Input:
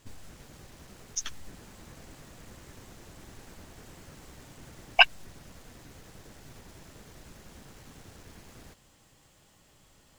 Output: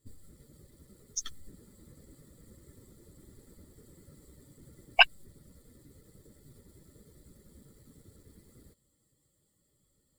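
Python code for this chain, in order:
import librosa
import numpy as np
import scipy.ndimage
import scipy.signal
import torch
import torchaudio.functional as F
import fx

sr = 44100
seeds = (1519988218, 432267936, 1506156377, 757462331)

y = fx.bin_expand(x, sr, power=1.5)
y = y * librosa.db_to_amplitude(-1.0)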